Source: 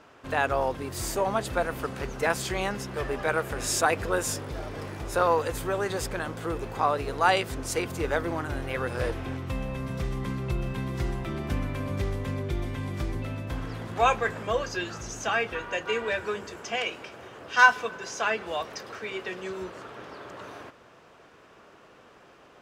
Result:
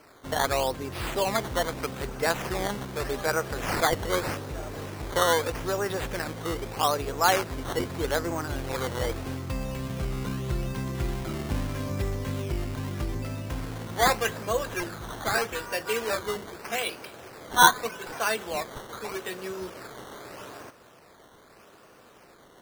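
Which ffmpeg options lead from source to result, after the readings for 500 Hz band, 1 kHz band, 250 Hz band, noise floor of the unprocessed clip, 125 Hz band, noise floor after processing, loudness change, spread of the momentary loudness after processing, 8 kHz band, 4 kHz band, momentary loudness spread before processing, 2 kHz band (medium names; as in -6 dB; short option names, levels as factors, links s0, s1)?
0.0 dB, +0.5 dB, +0.5 dB, -54 dBFS, 0.0 dB, -54 dBFS, 0.0 dB, 13 LU, +2.0 dB, +4.0 dB, 12 LU, -2.0 dB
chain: -af "acrusher=samples=12:mix=1:aa=0.000001:lfo=1:lforange=12:lforate=0.81"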